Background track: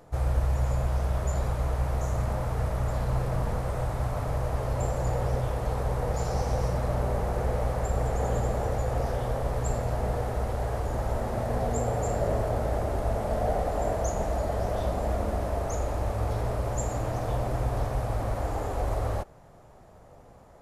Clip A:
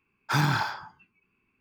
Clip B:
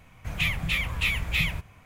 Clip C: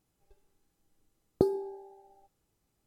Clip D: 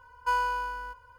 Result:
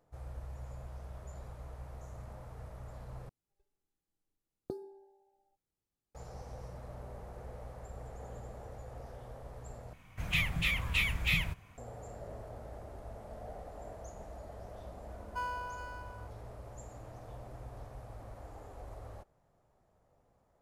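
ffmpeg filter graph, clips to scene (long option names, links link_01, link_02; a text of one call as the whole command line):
ffmpeg -i bed.wav -i cue0.wav -i cue1.wav -i cue2.wav -i cue3.wav -filter_complex "[0:a]volume=-19dB[link_01];[4:a]aecho=1:1:417:0.335[link_02];[link_01]asplit=3[link_03][link_04][link_05];[link_03]atrim=end=3.294[link_06];[3:a]atrim=end=2.86,asetpts=PTS-STARTPTS,volume=-15.5dB[link_07];[link_04]atrim=start=6.146:end=9.934[link_08];[2:a]atrim=end=1.85,asetpts=PTS-STARTPTS,volume=-4.5dB[link_09];[link_05]atrim=start=11.776[link_10];[link_02]atrim=end=1.18,asetpts=PTS-STARTPTS,volume=-11dB,afade=type=in:duration=0.004:curve=hsin,afade=type=out:start_time=1.176:duration=0.004:curve=hsin,adelay=15090[link_11];[link_06][link_07]acrossfade=duration=0.004:curve1=hsin:curve2=hsin[link_12];[link_12][link_08]acrossfade=duration=0.004:curve1=hsin:curve2=hsin[link_13];[link_13][link_09]acrossfade=duration=0.004:curve1=hsin:curve2=hsin[link_14];[link_14][link_10]acrossfade=duration=0.004:curve1=hsin:curve2=hsin[link_15];[link_15][link_11]amix=inputs=2:normalize=0" out.wav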